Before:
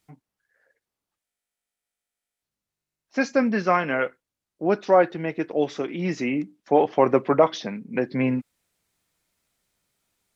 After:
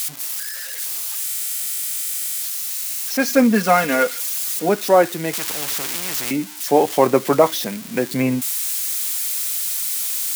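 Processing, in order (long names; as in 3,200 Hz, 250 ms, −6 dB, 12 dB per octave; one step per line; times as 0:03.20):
spike at every zero crossing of −21.5 dBFS
0:03.27–0:04.69: comb filter 4.2 ms, depth 76%
0:05.33–0:06.31: every bin compressed towards the loudest bin 4 to 1
level +3.5 dB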